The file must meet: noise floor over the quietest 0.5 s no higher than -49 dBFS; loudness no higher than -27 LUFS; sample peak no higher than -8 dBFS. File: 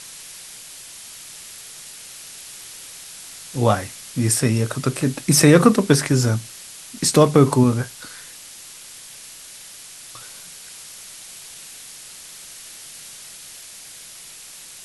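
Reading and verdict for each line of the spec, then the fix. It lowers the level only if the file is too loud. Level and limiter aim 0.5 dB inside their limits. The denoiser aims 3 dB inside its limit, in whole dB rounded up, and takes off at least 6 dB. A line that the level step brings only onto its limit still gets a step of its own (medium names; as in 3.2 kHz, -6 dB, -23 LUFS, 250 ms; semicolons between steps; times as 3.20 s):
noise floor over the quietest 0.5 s -40 dBFS: fail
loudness -18.0 LUFS: fail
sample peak -1.5 dBFS: fail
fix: trim -9.5 dB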